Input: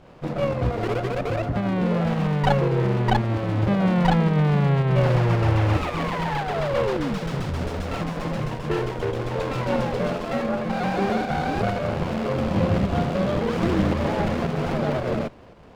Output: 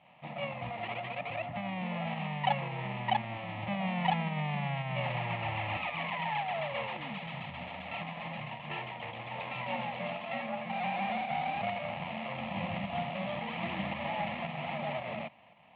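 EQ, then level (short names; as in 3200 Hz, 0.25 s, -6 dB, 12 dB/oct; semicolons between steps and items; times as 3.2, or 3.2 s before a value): speaker cabinet 170–2900 Hz, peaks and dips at 290 Hz -9 dB, 510 Hz -7 dB, 1100 Hz -8 dB; tilt +2.5 dB/oct; fixed phaser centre 1500 Hz, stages 6; -2.5 dB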